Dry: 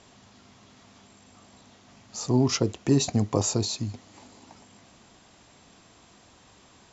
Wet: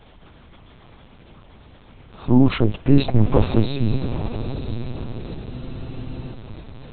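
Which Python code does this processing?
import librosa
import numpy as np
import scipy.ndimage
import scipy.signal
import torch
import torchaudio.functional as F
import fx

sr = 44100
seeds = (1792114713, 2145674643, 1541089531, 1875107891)

p1 = fx.low_shelf(x, sr, hz=150.0, db=10.5)
p2 = fx.rider(p1, sr, range_db=10, speed_s=2.0)
p3 = p1 + F.gain(torch.from_numpy(p2), 1.0).numpy()
p4 = fx.transient(p3, sr, attack_db=-1, sustain_db=4)
p5 = p4 + fx.echo_diffused(p4, sr, ms=930, feedback_pct=54, wet_db=-9.5, dry=0)
p6 = fx.lpc_vocoder(p5, sr, seeds[0], excitation='pitch_kept', order=8)
p7 = fx.spec_freeze(p6, sr, seeds[1], at_s=5.53, hold_s=0.8)
y = F.gain(torch.from_numpy(p7), -1.0).numpy()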